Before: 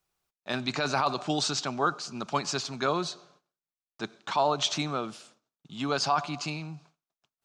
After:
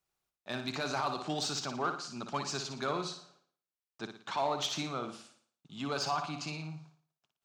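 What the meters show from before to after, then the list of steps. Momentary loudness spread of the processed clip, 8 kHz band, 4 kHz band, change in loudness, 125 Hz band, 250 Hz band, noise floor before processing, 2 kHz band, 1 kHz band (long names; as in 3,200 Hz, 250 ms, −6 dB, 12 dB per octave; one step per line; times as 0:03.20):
13 LU, −5.5 dB, −6.0 dB, −6.0 dB, −5.5 dB, −6.0 dB, below −85 dBFS, −6.0 dB, −6.5 dB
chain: harmonic generator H 5 −24 dB, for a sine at −14 dBFS
flutter between parallel walls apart 9.9 metres, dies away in 0.46 s
level −8 dB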